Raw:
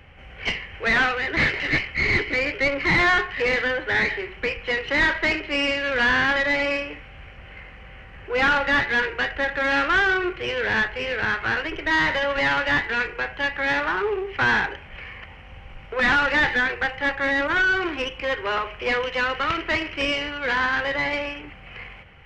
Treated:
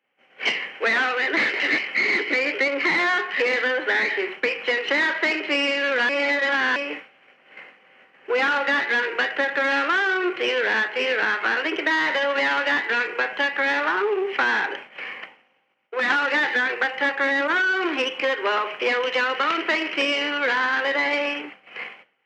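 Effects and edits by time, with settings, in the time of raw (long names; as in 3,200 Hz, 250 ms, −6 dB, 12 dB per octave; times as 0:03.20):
0:06.09–0:06.76: reverse
0:15.23–0:16.10: fade out, to −8.5 dB
whole clip: high-pass filter 250 Hz 24 dB per octave; downward expander −36 dBFS; downward compressor, threshold −26 dBFS; level +7 dB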